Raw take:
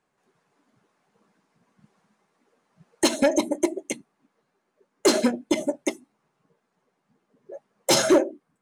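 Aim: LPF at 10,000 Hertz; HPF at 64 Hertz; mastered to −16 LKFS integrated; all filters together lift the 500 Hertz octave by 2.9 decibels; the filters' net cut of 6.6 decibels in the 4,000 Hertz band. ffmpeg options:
ffmpeg -i in.wav -af "highpass=64,lowpass=10000,equalizer=frequency=500:width_type=o:gain=4,equalizer=frequency=4000:width_type=o:gain=-8.5,volume=6.5dB" out.wav

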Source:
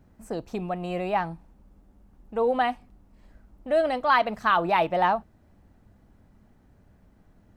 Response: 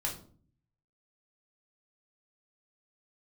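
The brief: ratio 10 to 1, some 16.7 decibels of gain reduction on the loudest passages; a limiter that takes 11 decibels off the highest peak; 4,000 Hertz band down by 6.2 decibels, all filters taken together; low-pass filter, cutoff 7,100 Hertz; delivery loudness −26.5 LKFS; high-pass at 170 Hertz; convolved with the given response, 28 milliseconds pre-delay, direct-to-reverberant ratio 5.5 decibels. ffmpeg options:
-filter_complex "[0:a]highpass=170,lowpass=7100,equalizer=frequency=4000:width_type=o:gain=-9,acompressor=threshold=-35dB:ratio=10,alimiter=level_in=10.5dB:limit=-24dB:level=0:latency=1,volume=-10.5dB,asplit=2[link_01][link_02];[1:a]atrim=start_sample=2205,adelay=28[link_03];[link_02][link_03]afir=irnorm=-1:irlink=0,volume=-8.5dB[link_04];[link_01][link_04]amix=inputs=2:normalize=0,volume=16.5dB"

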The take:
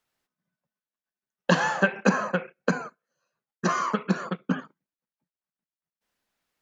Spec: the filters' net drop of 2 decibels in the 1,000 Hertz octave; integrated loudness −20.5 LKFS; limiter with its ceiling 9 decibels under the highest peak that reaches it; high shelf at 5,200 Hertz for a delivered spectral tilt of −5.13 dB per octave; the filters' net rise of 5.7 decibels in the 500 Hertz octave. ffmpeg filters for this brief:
ffmpeg -i in.wav -af "equalizer=frequency=500:width_type=o:gain=7.5,equalizer=frequency=1000:width_type=o:gain=-4,highshelf=frequency=5200:gain=-9,volume=8dB,alimiter=limit=-5dB:level=0:latency=1" out.wav

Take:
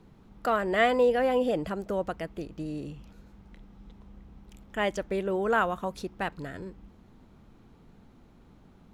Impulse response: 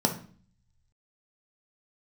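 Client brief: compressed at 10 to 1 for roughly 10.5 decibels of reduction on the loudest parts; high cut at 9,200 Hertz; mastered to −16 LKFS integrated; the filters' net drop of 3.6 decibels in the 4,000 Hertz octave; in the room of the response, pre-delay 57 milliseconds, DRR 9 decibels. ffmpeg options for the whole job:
-filter_complex "[0:a]lowpass=9200,equalizer=frequency=4000:width_type=o:gain=-5.5,acompressor=threshold=-29dB:ratio=10,asplit=2[link_01][link_02];[1:a]atrim=start_sample=2205,adelay=57[link_03];[link_02][link_03]afir=irnorm=-1:irlink=0,volume=-20dB[link_04];[link_01][link_04]amix=inputs=2:normalize=0,volume=18dB"

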